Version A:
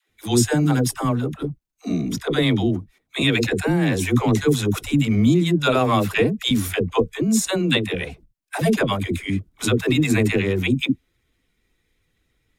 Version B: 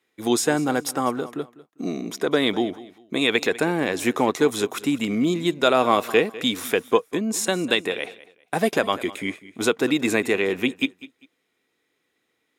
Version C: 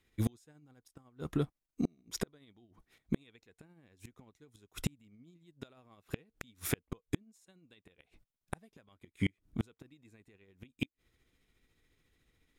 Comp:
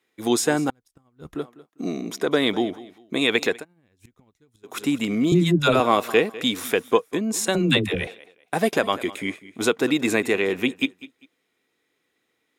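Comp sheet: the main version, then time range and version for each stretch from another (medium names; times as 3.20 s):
B
0.70–1.35 s: from C
3.57–4.71 s: from C, crossfade 0.16 s
5.32–5.80 s: from A
7.55–8.07 s: from A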